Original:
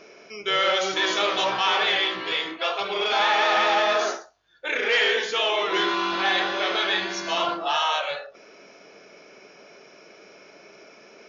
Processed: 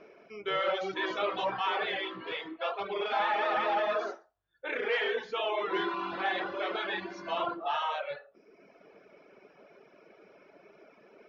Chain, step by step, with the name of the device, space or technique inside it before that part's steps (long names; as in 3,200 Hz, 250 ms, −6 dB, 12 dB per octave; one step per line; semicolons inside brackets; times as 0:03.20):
reverb reduction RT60 1 s
phone in a pocket (low-pass filter 3,800 Hz 12 dB per octave; high-shelf EQ 2,400 Hz −12 dB)
level −3.5 dB